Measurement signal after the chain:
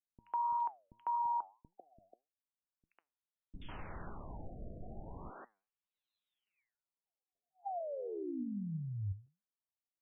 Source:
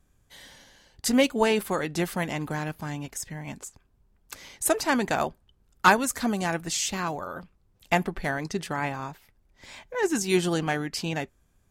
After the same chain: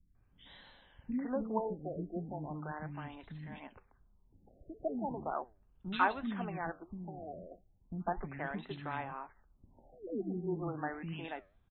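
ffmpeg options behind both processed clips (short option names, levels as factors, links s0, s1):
-filter_complex "[0:a]equalizer=f=125:t=o:w=1:g=-4,equalizer=f=500:t=o:w=1:g=-5,equalizer=f=2000:t=o:w=1:g=-4,asplit=2[s0][s1];[s1]acompressor=threshold=0.01:ratio=6,volume=1.06[s2];[s0][s2]amix=inputs=2:normalize=0,acrossover=split=300|2500[s3][s4][s5];[s5]adelay=80[s6];[s4]adelay=150[s7];[s3][s7][s6]amix=inputs=3:normalize=0,flanger=delay=4.6:depth=6.1:regen=84:speed=1.7:shape=triangular,afftfilt=real='re*lt(b*sr/1024,720*pow(4200/720,0.5+0.5*sin(2*PI*0.37*pts/sr)))':imag='im*lt(b*sr/1024,720*pow(4200/720,0.5+0.5*sin(2*PI*0.37*pts/sr)))':win_size=1024:overlap=0.75,volume=0.631"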